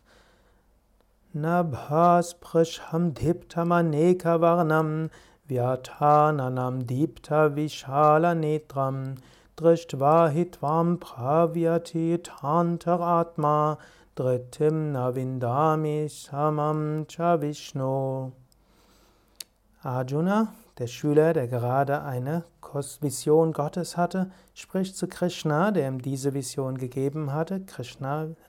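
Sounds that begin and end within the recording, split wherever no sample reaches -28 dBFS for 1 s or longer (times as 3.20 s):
1.35–18.27 s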